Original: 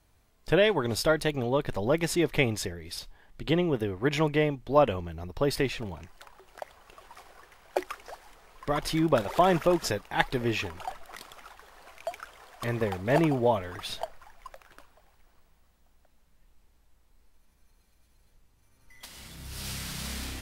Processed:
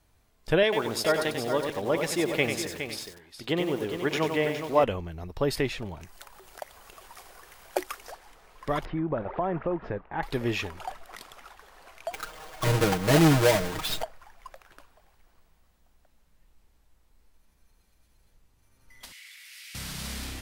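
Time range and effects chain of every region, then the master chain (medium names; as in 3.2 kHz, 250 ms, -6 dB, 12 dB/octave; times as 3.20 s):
0.63–4.84 s: high-pass 270 Hz 6 dB/octave + delay 414 ms -9 dB + bit-crushed delay 94 ms, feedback 35%, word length 7-bit, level -6 dB
6.01–8.12 s: treble shelf 6 kHz +11 dB + upward compressor, threshold -44 dBFS
8.85–10.23 s: Bessel low-pass 1.4 kHz, order 4 + compression 2.5:1, threshold -26 dBFS
12.13–14.03 s: square wave that keeps the level + compression 2:1, threshold -23 dBFS + comb 6.4 ms, depth 96%
19.12–19.75 s: ladder high-pass 1.9 kHz, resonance 65% + level flattener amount 70%
whole clip: none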